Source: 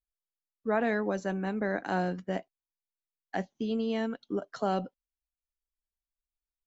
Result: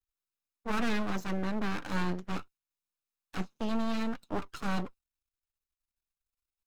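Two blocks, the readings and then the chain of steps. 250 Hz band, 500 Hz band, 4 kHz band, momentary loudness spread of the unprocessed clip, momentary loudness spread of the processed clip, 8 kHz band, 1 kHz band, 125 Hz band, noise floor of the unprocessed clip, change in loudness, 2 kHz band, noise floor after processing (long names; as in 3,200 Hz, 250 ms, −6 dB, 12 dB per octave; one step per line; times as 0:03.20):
−1.0 dB, −8.0 dB, +3.5 dB, 8 LU, 9 LU, can't be measured, −3.0 dB, 0.0 dB, below −85 dBFS, −3.0 dB, −2.0 dB, below −85 dBFS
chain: lower of the sound and its delayed copy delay 0.78 ms
half-wave rectification
level +5 dB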